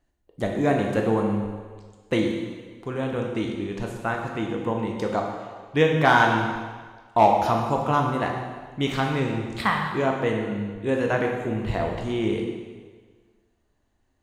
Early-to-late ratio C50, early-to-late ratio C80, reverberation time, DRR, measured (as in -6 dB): 3.5 dB, 5.0 dB, 1.5 s, 1.0 dB